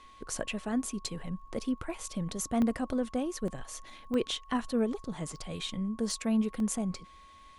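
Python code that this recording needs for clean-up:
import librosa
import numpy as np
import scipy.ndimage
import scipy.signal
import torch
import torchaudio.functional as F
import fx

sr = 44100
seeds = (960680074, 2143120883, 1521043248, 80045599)

y = fx.fix_declick_ar(x, sr, threshold=6.5)
y = fx.notch(y, sr, hz=1100.0, q=30.0)
y = fx.fix_interpolate(y, sr, at_s=(1.06, 2.62, 3.48, 4.14, 5.36, 6.11, 6.6), length_ms=1.2)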